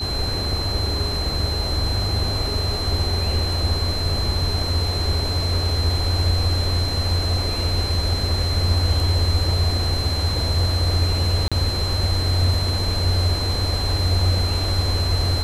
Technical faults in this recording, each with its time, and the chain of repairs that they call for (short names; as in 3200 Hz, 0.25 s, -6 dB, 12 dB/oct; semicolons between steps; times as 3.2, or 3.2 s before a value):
tone 4100 Hz -26 dBFS
11.48–11.52 gap 36 ms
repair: notch 4100 Hz, Q 30; interpolate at 11.48, 36 ms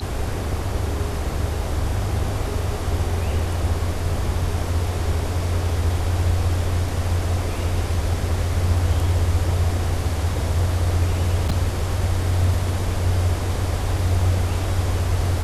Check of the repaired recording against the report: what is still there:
none